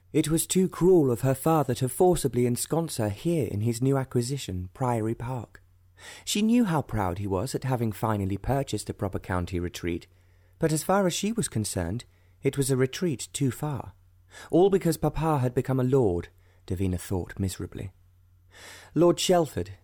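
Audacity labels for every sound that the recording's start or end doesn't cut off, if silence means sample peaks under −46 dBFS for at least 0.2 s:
5.990000	10.050000	sound
10.610000	12.020000	sound
12.430000	13.900000	sound
14.320000	16.380000	sound
16.680000	17.890000	sound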